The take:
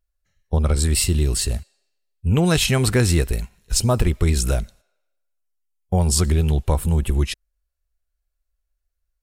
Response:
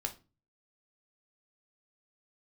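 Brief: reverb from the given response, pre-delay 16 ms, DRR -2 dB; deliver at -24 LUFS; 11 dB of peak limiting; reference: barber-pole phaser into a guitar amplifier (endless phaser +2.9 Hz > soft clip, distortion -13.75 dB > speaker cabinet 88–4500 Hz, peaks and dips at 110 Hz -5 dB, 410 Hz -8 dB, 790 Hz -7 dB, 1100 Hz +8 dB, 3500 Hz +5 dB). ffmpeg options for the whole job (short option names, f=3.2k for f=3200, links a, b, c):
-filter_complex "[0:a]alimiter=limit=-16dB:level=0:latency=1,asplit=2[a][b];[1:a]atrim=start_sample=2205,adelay=16[c];[b][c]afir=irnorm=-1:irlink=0,volume=1dB[d];[a][d]amix=inputs=2:normalize=0,asplit=2[e][f];[f]afreqshift=2.9[g];[e][g]amix=inputs=2:normalize=1,asoftclip=threshold=-18.5dB,highpass=88,equalizer=f=110:t=q:w=4:g=-5,equalizer=f=410:t=q:w=4:g=-8,equalizer=f=790:t=q:w=4:g=-7,equalizer=f=1.1k:t=q:w=4:g=8,equalizer=f=3.5k:t=q:w=4:g=5,lowpass=f=4.5k:w=0.5412,lowpass=f=4.5k:w=1.3066,volume=7dB"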